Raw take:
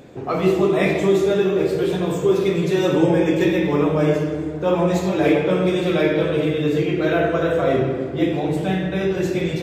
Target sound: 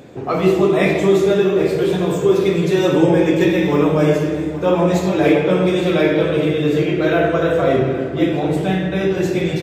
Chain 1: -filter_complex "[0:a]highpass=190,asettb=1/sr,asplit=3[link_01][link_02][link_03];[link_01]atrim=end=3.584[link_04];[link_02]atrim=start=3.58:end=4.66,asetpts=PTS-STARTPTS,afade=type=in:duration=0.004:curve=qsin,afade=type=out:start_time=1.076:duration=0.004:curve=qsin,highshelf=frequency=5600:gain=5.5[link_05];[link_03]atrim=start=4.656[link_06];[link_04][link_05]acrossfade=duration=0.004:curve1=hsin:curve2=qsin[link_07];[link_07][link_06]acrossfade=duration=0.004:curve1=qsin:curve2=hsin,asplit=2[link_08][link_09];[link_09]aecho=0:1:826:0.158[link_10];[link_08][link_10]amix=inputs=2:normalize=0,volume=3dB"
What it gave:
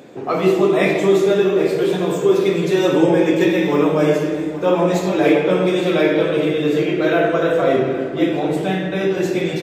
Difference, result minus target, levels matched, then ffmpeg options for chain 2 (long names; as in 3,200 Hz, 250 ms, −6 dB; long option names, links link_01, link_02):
125 Hz band −4.0 dB
-filter_complex "[0:a]highpass=48,asettb=1/sr,asplit=3[link_01][link_02][link_03];[link_01]atrim=end=3.584[link_04];[link_02]atrim=start=3.58:end=4.66,asetpts=PTS-STARTPTS,afade=type=in:duration=0.004:curve=qsin,afade=type=out:start_time=1.076:duration=0.004:curve=qsin,highshelf=frequency=5600:gain=5.5[link_05];[link_03]atrim=start=4.656[link_06];[link_04][link_05]acrossfade=duration=0.004:curve1=hsin:curve2=qsin[link_07];[link_07][link_06]acrossfade=duration=0.004:curve1=qsin:curve2=hsin,asplit=2[link_08][link_09];[link_09]aecho=0:1:826:0.158[link_10];[link_08][link_10]amix=inputs=2:normalize=0,volume=3dB"